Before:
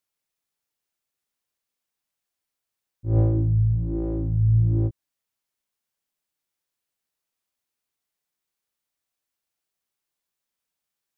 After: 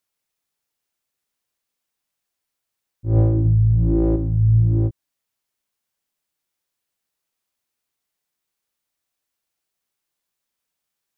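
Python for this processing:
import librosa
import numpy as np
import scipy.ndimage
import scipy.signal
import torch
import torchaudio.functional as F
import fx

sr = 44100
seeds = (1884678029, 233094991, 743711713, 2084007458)

y = fx.env_flatten(x, sr, amount_pct=70, at=(3.45, 4.16))
y = y * librosa.db_to_amplitude(3.5)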